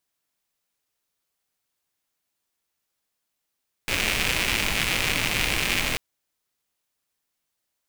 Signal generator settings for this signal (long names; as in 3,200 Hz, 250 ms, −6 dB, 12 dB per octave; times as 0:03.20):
rain-like ticks over hiss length 2.09 s, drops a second 190, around 2,400 Hz, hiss −2.5 dB